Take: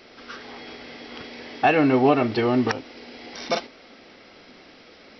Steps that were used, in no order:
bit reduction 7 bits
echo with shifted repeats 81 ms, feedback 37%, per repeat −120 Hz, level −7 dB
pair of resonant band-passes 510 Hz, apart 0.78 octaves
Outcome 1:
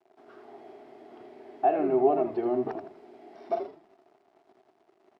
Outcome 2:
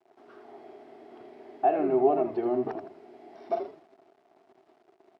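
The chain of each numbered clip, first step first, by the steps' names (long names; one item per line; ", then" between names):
bit reduction, then echo with shifted repeats, then pair of resonant band-passes
echo with shifted repeats, then bit reduction, then pair of resonant band-passes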